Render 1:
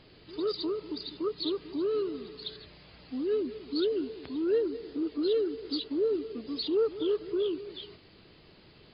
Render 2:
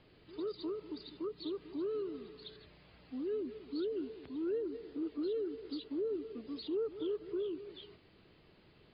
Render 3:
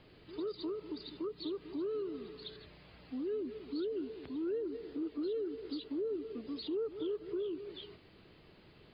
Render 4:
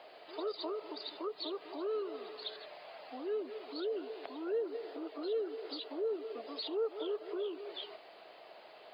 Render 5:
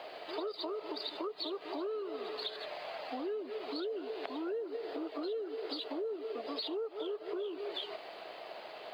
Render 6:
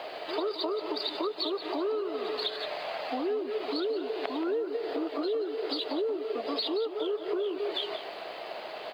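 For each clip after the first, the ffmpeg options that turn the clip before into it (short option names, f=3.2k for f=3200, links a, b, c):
-filter_complex "[0:a]lowpass=3.4k,acrossover=split=420[a][b];[b]alimiter=level_in=8.5dB:limit=-24dB:level=0:latency=1:release=168,volume=-8.5dB[c];[a][c]amix=inputs=2:normalize=0,volume=-6.5dB"
-af "acompressor=threshold=-44dB:ratio=1.5,volume=3.5dB"
-af "highpass=f=670:t=q:w=4.9,volume=5dB"
-filter_complex "[0:a]asplit=2[a][b];[b]aeval=exprs='sgn(val(0))*max(abs(val(0))-0.00168,0)':c=same,volume=-11.5dB[c];[a][c]amix=inputs=2:normalize=0,acompressor=threshold=-43dB:ratio=6,volume=7dB"
-af "aecho=1:1:177:0.251,volume=7dB"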